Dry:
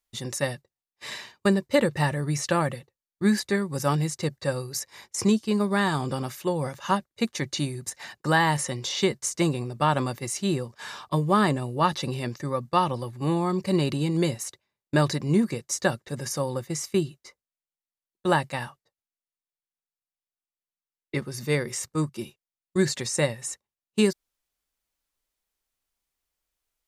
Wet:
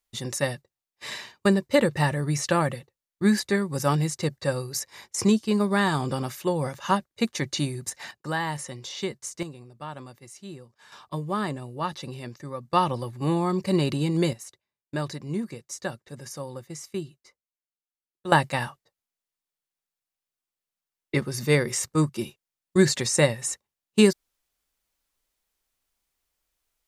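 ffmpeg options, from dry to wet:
ffmpeg -i in.wav -af "asetnsamples=nb_out_samples=441:pad=0,asendcmd='8.11 volume volume -7dB;9.43 volume volume -15dB;10.92 volume volume -7dB;12.7 volume volume 0.5dB;14.33 volume volume -8dB;18.32 volume volume 4dB',volume=1dB" out.wav

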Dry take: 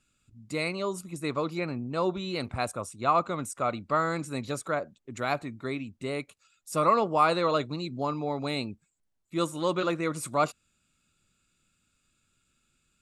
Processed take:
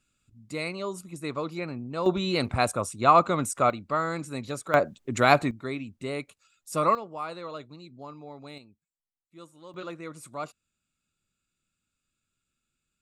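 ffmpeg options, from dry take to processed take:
ffmpeg -i in.wav -af "asetnsamples=nb_out_samples=441:pad=0,asendcmd='2.06 volume volume 6dB;3.7 volume volume -1dB;4.74 volume volume 10dB;5.51 volume volume 0dB;6.95 volume volume -12.5dB;8.58 volume volume -19.5dB;9.74 volume volume -10dB',volume=-2dB" out.wav

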